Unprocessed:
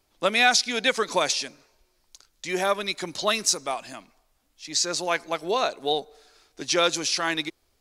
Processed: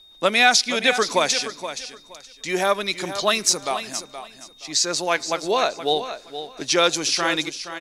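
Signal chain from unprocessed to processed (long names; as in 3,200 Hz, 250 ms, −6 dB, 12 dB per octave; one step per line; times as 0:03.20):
steady tone 3,700 Hz −51 dBFS
repeating echo 472 ms, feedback 21%, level −11 dB
level +3.5 dB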